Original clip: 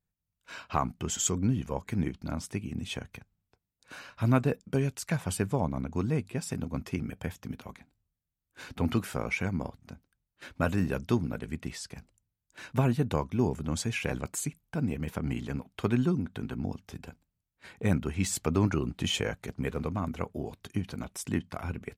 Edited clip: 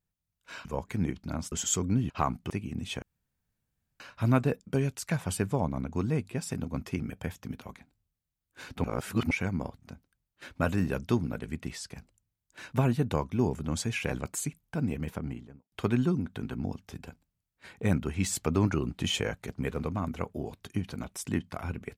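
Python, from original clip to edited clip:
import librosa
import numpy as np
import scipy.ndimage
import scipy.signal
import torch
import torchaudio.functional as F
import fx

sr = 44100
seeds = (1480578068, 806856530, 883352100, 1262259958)

y = fx.studio_fade_out(x, sr, start_s=14.96, length_s=0.76)
y = fx.edit(y, sr, fx.swap(start_s=0.65, length_s=0.4, other_s=1.63, other_length_s=0.87),
    fx.room_tone_fill(start_s=3.02, length_s=0.98),
    fx.reverse_span(start_s=8.84, length_s=0.47), tone=tone)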